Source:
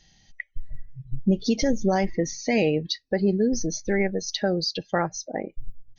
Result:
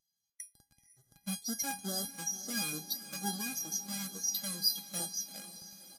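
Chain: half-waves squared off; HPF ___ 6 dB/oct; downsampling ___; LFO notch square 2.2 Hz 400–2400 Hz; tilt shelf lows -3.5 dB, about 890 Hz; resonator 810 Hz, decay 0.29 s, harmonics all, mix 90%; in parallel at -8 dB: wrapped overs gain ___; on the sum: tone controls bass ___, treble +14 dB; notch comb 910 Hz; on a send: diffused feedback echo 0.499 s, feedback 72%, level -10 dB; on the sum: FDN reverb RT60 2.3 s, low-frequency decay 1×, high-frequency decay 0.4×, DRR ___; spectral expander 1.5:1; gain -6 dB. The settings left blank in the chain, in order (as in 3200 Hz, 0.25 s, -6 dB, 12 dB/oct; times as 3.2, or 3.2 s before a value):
140 Hz, 32000 Hz, 26.5 dB, +5 dB, 19.5 dB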